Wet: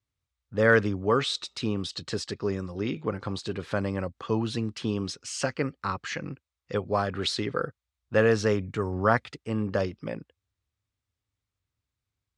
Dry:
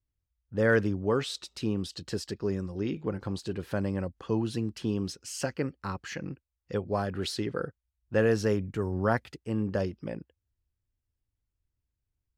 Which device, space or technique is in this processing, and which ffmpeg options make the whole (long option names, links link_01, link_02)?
car door speaker: -af "highpass=94,equalizer=frequency=190:width_type=q:width=4:gain=-4,equalizer=frequency=340:width_type=q:width=4:gain=-4,equalizer=frequency=1200:width_type=q:width=4:gain=6,equalizer=frequency=2200:width_type=q:width=4:gain=4,equalizer=frequency=3700:width_type=q:width=4:gain=5,lowpass=frequency=8800:width=0.5412,lowpass=frequency=8800:width=1.3066,volume=3.5dB"